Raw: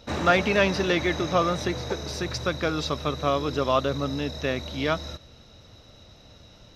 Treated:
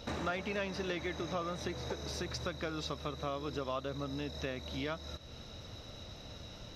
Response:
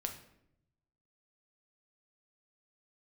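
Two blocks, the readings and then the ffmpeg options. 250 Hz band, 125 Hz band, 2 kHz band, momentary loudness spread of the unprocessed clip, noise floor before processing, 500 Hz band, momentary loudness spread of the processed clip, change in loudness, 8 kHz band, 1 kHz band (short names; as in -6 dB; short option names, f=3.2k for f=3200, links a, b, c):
-12.0 dB, -11.0 dB, -14.0 dB, 9 LU, -52 dBFS, -13.5 dB, 12 LU, -14.0 dB, -10.0 dB, -14.0 dB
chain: -af "acompressor=threshold=-42dB:ratio=3,volume=2dB"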